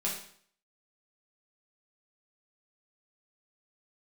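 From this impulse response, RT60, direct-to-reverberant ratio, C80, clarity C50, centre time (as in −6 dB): 0.55 s, −5.0 dB, 8.5 dB, 4.5 dB, 35 ms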